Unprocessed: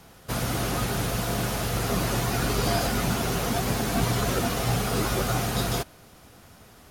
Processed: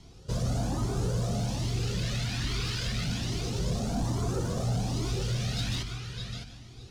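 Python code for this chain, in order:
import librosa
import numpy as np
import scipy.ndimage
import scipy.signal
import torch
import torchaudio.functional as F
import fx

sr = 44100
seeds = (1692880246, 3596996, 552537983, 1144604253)

p1 = scipy.signal.sosfilt(scipy.signal.butter(2, 4300.0, 'lowpass', fs=sr, output='sos'), x)
p2 = fx.rider(p1, sr, range_db=3, speed_s=0.5)
p3 = p1 + F.gain(torch.from_numpy(p2), 1.5).numpy()
p4 = fx.low_shelf(p3, sr, hz=140.0, db=-4.0)
p5 = p4 + fx.echo_feedback(p4, sr, ms=611, feedback_pct=27, wet_db=-10, dry=0)
p6 = np.clip(10.0 ** (20.5 / 20.0) * p5, -1.0, 1.0) / 10.0 ** (20.5 / 20.0)
p7 = fx.phaser_stages(p6, sr, stages=2, low_hz=680.0, high_hz=2000.0, hz=0.29, feedback_pct=50)
p8 = p7 + 10.0 ** (-12.0 / 20.0) * np.pad(p7, (int(149 * sr / 1000.0), 0))[:len(p7)]
p9 = fx.comb_cascade(p8, sr, direction='rising', hz=1.2)
y = F.gain(torch.from_numpy(p9), -2.0).numpy()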